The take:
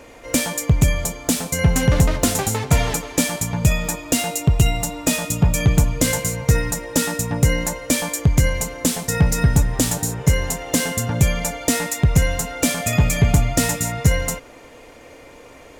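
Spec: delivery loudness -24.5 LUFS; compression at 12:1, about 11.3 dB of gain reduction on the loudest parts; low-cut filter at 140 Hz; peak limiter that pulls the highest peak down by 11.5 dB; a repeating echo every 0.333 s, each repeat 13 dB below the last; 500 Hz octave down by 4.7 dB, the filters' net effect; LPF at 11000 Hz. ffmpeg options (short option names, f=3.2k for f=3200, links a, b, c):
-af "highpass=140,lowpass=11k,equalizer=f=500:t=o:g=-5.5,acompressor=threshold=-25dB:ratio=12,alimiter=limit=-20dB:level=0:latency=1,aecho=1:1:333|666|999:0.224|0.0493|0.0108,volume=7dB"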